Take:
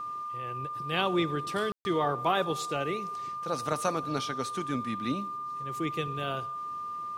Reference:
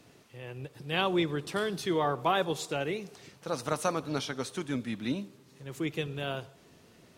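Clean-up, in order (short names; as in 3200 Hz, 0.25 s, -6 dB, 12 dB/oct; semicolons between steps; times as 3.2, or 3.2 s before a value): notch 1200 Hz, Q 30; room tone fill 1.72–1.85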